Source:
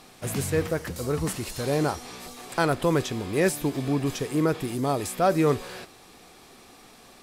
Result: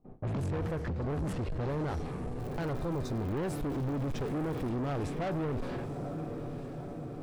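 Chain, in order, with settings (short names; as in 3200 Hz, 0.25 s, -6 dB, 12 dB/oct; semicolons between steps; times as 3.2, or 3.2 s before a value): gate with hold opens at -38 dBFS; low-pass opened by the level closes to 580 Hz, open at -22.5 dBFS; tilt -3 dB/oct; limiter -17 dBFS, peak gain reduction 11 dB; 2.38–4.68 crackle 330/s -37 dBFS; bell 8100 Hz -4 dB 3 oct; diffused feedback echo 0.907 s, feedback 59%, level -12 dB; soft clip -30.5 dBFS, distortion -7 dB; 2.73–3.16 spectral repair 1400–3500 Hz after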